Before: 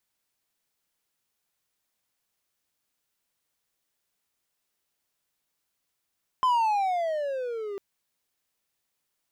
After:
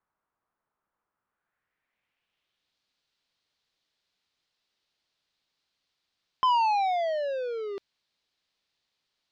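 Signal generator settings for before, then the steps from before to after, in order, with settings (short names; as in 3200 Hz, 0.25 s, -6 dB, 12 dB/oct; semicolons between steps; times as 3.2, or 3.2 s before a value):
gliding synth tone triangle, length 1.35 s, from 1040 Hz, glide -17 st, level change -13 dB, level -17 dB
low-pass sweep 1200 Hz -> 4200 Hz, 1.14–2.78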